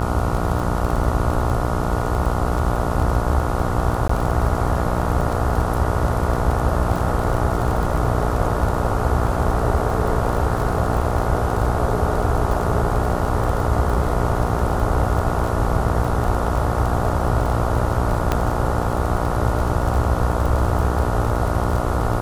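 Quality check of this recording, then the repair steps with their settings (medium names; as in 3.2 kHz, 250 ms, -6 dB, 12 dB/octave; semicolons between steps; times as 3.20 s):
buzz 60 Hz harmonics 24 -24 dBFS
crackle 25 per s -23 dBFS
4.08–4.09 s: dropout 14 ms
18.32 s: pop -6 dBFS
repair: de-click; de-hum 60 Hz, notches 24; interpolate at 4.08 s, 14 ms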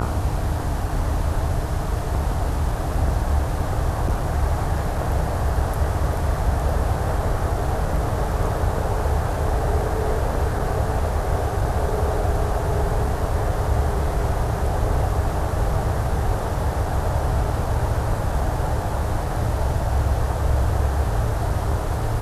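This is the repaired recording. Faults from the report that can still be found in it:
nothing left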